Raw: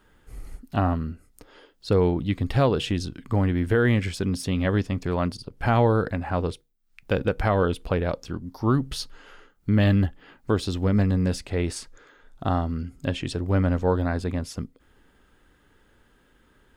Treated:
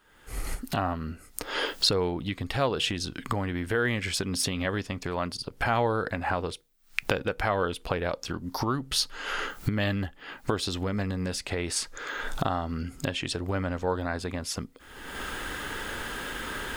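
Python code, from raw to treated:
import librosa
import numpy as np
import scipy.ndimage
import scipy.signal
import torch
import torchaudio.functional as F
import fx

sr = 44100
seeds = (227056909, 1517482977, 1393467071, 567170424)

y = fx.recorder_agc(x, sr, target_db=-14.0, rise_db_per_s=42.0, max_gain_db=30)
y = fx.low_shelf(y, sr, hz=460.0, db=-11.5)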